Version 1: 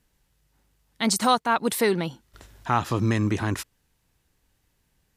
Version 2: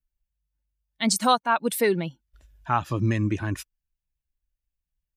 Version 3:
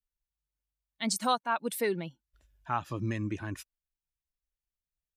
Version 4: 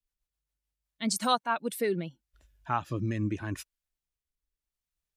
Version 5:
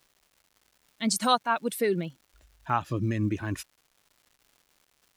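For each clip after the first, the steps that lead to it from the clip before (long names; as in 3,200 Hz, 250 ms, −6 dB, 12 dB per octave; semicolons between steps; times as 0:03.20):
spectral dynamics exaggerated over time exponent 1.5; level +1.5 dB
low-shelf EQ 110 Hz −5 dB; level −7.5 dB
rotating-speaker cabinet horn 7.5 Hz, later 0.8 Hz, at 0:00.36; level +4 dB
surface crackle 350 per second −53 dBFS; level +3 dB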